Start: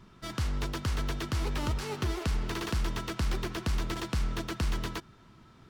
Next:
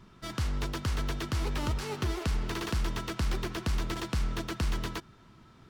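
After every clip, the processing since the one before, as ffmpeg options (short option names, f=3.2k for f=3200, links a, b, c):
-af anull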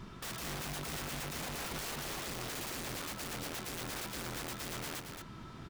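-filter_complex "[0:a]acompressor=threshold=-41dB:ratio=6,aeval=exprs='(mod(141*val(0)+1,2)-1)/141':c=same,asplit=2[a][b];[b]aecho=0:1:222:0.501[c];[a][c]amix=inputs=2:normalize=0,volume=6.5dB"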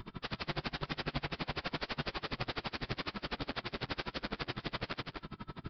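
-af "aresample=11025,aresample=44100,flanger=delay=20:depth=6.3:speed=0.93,aeval=exprs='val(0)*pow(10,-30*(0.5-0.5*cos(2*PI*12*n/s))/20)':c=same,volume=11.5dB"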